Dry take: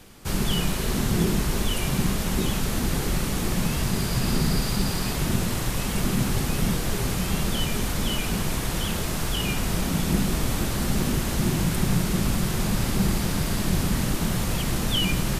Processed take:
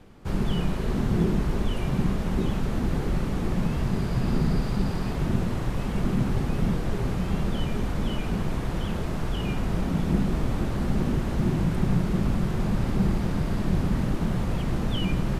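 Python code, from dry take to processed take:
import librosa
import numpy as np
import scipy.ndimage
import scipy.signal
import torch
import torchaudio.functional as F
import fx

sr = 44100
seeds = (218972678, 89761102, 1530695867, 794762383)

y = fx.lowpass(x, sr, hz=1000.0, slope=6)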